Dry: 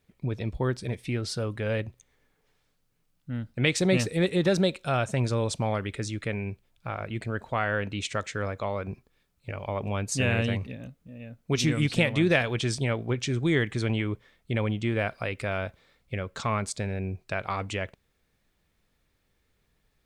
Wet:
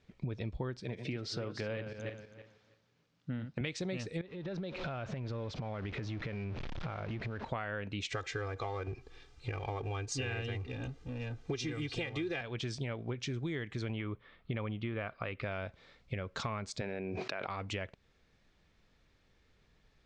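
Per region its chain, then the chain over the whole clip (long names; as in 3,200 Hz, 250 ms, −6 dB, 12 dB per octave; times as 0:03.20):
0:00.80–0:03.61: feedback delay that plays each chunk backwards 162 ms, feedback 41%, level −9.5 dB + band-pass filter 120–7,300 Hz
0:04.21–0:07.45: converter with a step at zero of −35 dBFS + downward compressor 12 to 1, threshold −36 dBFS + high-frequency loss of the air 190 metres
0:08.12–0:12.41: mu-law and A-law mismatch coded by mu + comb filter 2.5 ms, depth 86%
0:13.93–0:15.43: low-pass filter 3,900 Hz 24 dB per octave + parametric band 1,200 Hz +8 dB 0.27 octaves
0:16.81–0:17.47: high-pass filter 270 Hz + high-frequency loss of the air 110 metres + envelope flattener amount 100%
whole clip: low-pass filter 6,300 Hz 24 dB per octave; downward compressor 8 to 1, threshold −38 dBFS; level +3 dB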